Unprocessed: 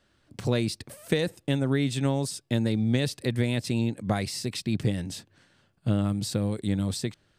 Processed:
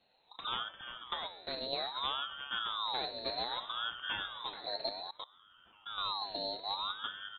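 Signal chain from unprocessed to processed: delay with a stepping band-pass 0.543 s, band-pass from 300 Hz, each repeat 0.7 oct, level -9.5 dB; dynamic EQ 370 Hz, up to -3 dB, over -38 dBFS, Q 0.78; added harmonics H 2 -9 dB, 3 -35 dB, 5 -20 dB, 7 -28 dB, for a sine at -12.5 dBFS; inverted band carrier 2900 Hz; resonator 91 Hz, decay 0.9 s, harmonics all, mix 70%; frequency shift -360 Hz; in parallel at -2.5 dB: compressor 10:1, threshold -47 dBFS, peak gain reduction 19.5 dB; 0.63–1.73 on the sum: high shelf 2200 Hz -7 dB; echo 0.349 s -10 dB; 4.89–5.98 level quantiser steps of 20 dB; ring modulator with a swept carrier 1300 Hz, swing 35%, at 0.62 Hz

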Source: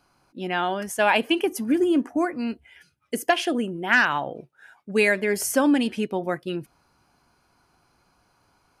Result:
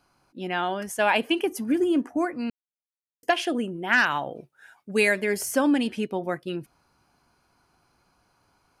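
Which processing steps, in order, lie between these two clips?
de-esser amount 40%; 2.5–3.23 mute; 3.98–5.35 high shelf 4600 Hz +6.5 dB; gain -2 dB

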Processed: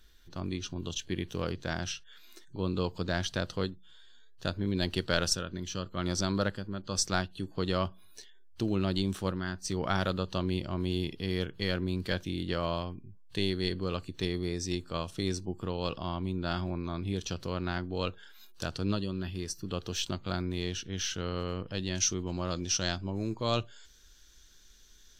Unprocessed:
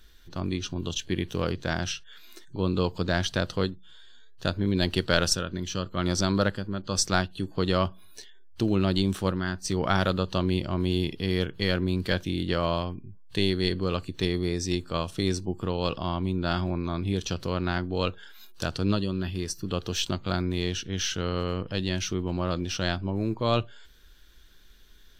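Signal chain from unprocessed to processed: bell 6300 Hz +2 dB 0.85 oct, from 21.95 s +14.5 dB; gain -5.5 dB

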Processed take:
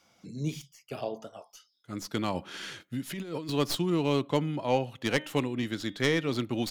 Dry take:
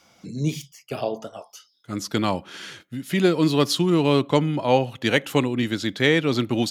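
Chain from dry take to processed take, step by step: tracing distortion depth 0.066 ms; 2.32–3.5 negative-ratio compressor -27 dBFS, ratio -1; 5.11–6.31 de-hum 305.4 Hz, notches 12; gain -8 dB

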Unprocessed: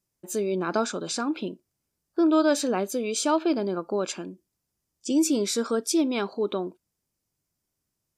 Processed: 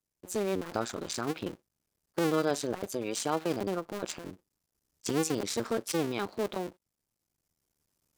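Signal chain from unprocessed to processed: cycle switcher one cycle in 2, muted; recorder AGC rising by 7 dB/s; gain -4.5 dB

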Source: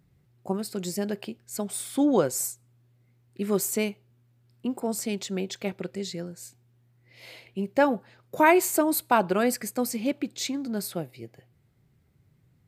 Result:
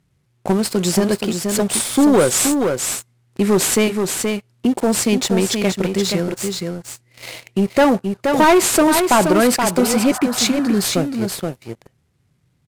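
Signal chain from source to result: CVSD 64 kbps; sample leveller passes 3; echo 0.475 s -6.5 dB; spectral repair 9.82–10.79, 600–1900 Hz both; in parallel at 0 dB: compressor, threshold -26 dBFS, peak gain reduction 13.5 dB

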